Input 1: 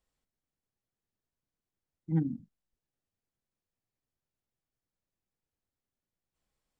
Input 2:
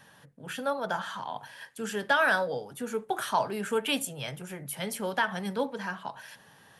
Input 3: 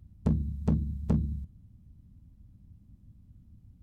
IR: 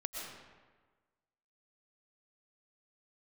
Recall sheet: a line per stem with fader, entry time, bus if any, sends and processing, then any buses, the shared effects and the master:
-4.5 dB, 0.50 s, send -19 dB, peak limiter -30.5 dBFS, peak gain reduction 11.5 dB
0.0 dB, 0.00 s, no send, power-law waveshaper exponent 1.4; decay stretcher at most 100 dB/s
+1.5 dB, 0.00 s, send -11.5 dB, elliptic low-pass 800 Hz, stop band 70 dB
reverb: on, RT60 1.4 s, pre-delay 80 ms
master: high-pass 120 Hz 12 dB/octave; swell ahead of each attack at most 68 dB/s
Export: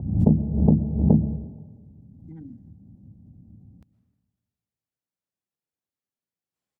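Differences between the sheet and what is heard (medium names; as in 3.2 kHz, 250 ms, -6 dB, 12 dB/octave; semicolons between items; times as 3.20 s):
stem 1: entry 0.50 s -> 0.20 s; stem 2: muted; stem 3 +1.5 dB -> +9.5 dB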